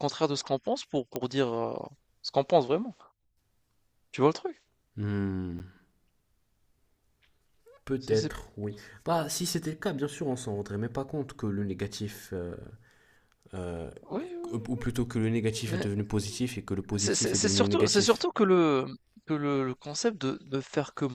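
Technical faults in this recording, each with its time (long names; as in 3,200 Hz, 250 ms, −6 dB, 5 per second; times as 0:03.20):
0:01.16: click −16 dBFS
0:05.59–0:05.60: drop-out 9.6 ms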